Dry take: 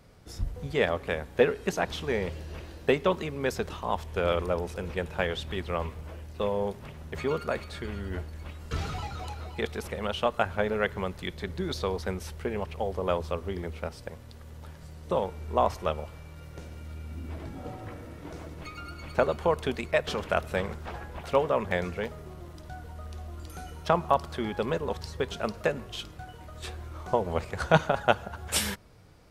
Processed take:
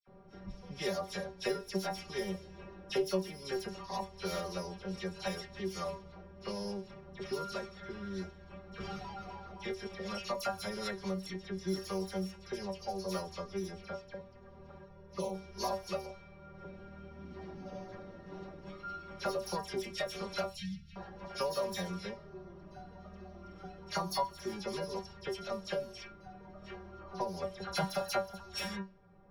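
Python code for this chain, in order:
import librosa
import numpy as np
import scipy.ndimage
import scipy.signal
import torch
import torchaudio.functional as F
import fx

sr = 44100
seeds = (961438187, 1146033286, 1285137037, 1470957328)

y = np.r_[np.sort(x[:len(x) // 8 * 8].reshape(-1, 8), axis=1).ravel(), x[len(x) // 8 * 8:]]
y = fx.high_shelf(y, sr, hz=3400.0, db=-11.5, at=(26.98, 27.72))
y = fx.dispersion(y, sr, late='lows', ms=72.0, hz=2400.0)
y = fx.env_flanger(y, sr, rest_ms=3.6, full_db=-28.0, at=(14.84, 15.33), fade=0.02)
y = fx.cheby1_bandstop(y, sr, low_hz=170.0, high_hz=2500.0, order=3, at=(20.5, 20.96))
y = fx.stiff_resonator(y, sr, f0_hz=190.0, decay_s=0.21, stiffness=0.002)
y = fx.env_lowpass(y, sr, base_hz=1100.0, full_db=-36.0)
y = fx.band_squash(y, sr, depth_pct=40)
y = y * librosa.db_to_amplitude(3.0)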